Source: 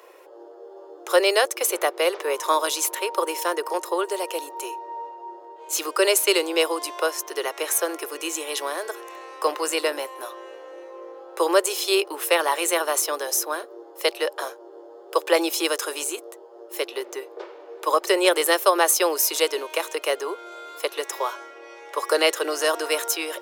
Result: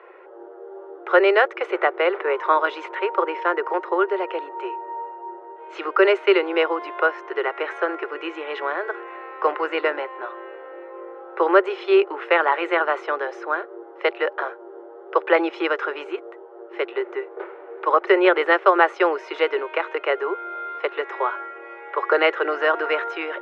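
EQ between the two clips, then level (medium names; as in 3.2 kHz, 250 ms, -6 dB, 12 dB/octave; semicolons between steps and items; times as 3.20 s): cabinet simulation 300–2600 Hz, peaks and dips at 380 Hz +8 dB, 800 Hz +4 dB, 1.4 kHz +9 dB, 2 kHz +5 dB; 0.0 dB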